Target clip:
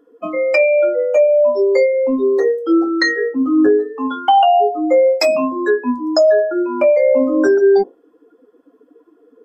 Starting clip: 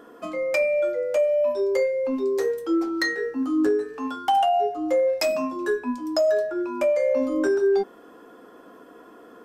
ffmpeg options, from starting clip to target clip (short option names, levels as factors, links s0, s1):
-af "afftdn=nr=25:nf=-33,volume=2.82"